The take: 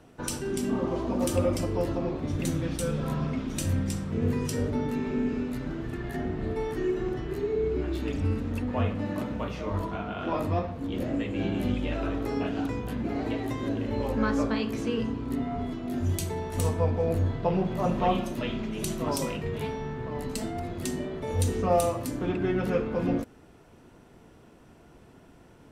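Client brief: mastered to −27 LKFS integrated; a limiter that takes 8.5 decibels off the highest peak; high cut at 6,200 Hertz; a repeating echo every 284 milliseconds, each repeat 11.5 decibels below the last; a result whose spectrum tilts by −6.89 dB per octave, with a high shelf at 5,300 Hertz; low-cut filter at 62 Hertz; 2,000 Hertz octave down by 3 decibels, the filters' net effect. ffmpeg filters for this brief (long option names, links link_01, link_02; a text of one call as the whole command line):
ffmpeg -i in.wav -af "highpass=62,lowpass=6200,equalizer=frequency=2000:width_type=o:gain=-3.5,highshelf=frequency=5300:gain=-3,alimiter=limit=-21dB:level=0:latency=1,aecho=1:1:284|568|852:0.266|0.0718|0.0194,volume=4dB" out.wav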